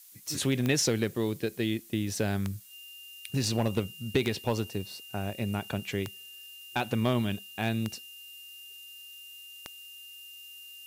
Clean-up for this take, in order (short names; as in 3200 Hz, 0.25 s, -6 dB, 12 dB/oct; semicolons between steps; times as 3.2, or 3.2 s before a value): clip repair -17 dBFS; de-click; notch 2800 Hz, Q 30; noise print and reduce 28 dB